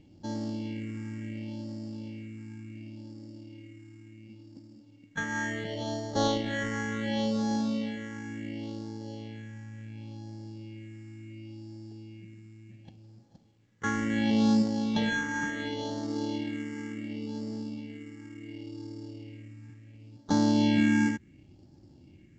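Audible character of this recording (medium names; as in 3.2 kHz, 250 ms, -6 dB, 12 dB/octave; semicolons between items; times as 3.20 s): aliases and images of a low sample rate 2.5 kHz, jitter 0%; phasing stages 4, 0.7 Hz, lowest notch 640–2400 Hz; µ-law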